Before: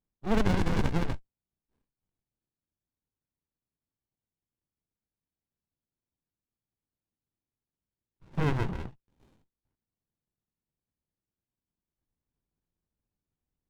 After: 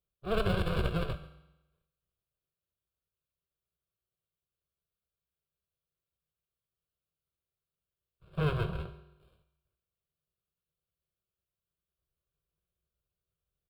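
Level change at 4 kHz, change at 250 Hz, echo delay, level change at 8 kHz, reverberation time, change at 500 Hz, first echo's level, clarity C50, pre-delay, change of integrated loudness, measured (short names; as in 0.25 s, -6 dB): +1.0 dB, -6.0 dB, 0.138 s, n/a, 0.95 s, 0.0 dB, -21.0 dB, 12.0 dB, 5 ms, -3.0 dB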